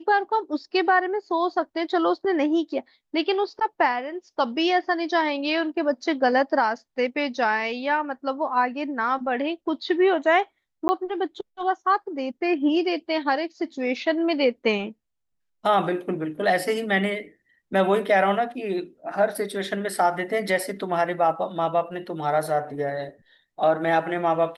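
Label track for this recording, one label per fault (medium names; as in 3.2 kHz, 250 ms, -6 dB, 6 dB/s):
10.880000	10.890000	dropout 10 ms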